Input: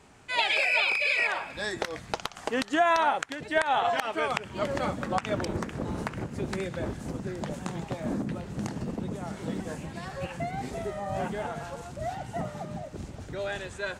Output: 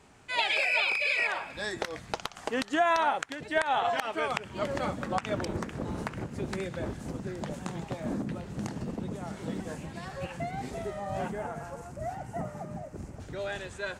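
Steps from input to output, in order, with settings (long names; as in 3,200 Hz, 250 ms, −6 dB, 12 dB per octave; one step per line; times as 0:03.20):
0:11.31–0:13.20: parametric band 3,600 Hz −12 dB 0.88 octaves
level −2 dB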